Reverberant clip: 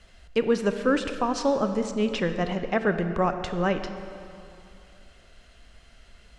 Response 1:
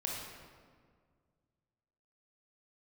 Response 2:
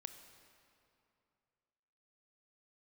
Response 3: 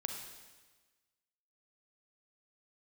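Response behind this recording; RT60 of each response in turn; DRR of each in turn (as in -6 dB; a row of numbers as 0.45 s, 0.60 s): 2; 1.9 s, 2.7 s, 1.3 s; -2.5 dB, 8.0 dB, 3.0 dB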